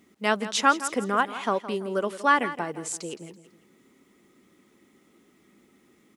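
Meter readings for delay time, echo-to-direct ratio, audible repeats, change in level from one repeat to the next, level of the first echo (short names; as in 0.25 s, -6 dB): 0.166 s, -13.5 dB, 3, -9.0 dB, -14.0 dB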